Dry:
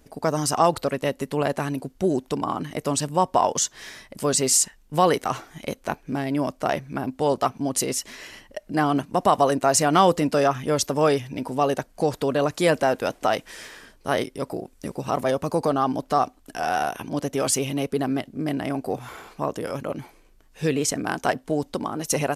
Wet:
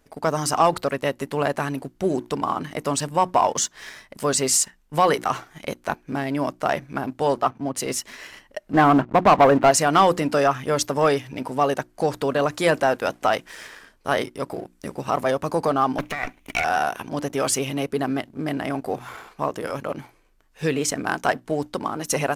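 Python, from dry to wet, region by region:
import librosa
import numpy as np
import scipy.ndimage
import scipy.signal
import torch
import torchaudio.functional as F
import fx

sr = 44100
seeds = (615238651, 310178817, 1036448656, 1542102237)

y = fx.chain(x, sr, fx.high_shelf(hz=3400.0, db=-9.0),
    fx.band_widen(depth_pct=40), at=(7.41, 7.86))
y = fx.chain(y, sr, fx.lowpass(hz=1600.0, slope=12),
    fx.leveller(passes=2), at=(8.73, 9.71))
y = fx.chain(y, sr, fx.lower_of_two(delay_ms=0.32),
    fx.peak_eq(hz=2300.0, db=14.5, octaves=0.66),
    fx.over_compress(threshold_db=-27.0, ratio=-1.0), at=(15.98, 16.64))
y = fx.peak_eq(y, sr, hz=1400.0, db=5.0, octaves=1.9)
y = fx.hum_notches(y, sr, base_hz=60, count=6)
y = fx.leveller(y, sr, passes=1)
y = y * librosa.db_to_amplitude(-4.5)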